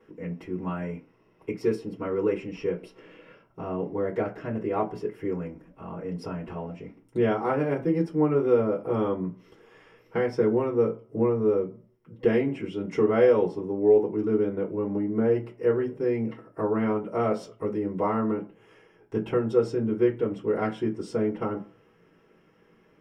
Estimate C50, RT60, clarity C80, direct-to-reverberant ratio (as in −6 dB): 15.0 dB, non-exponential decay, 20.0 dB, −5.5 dB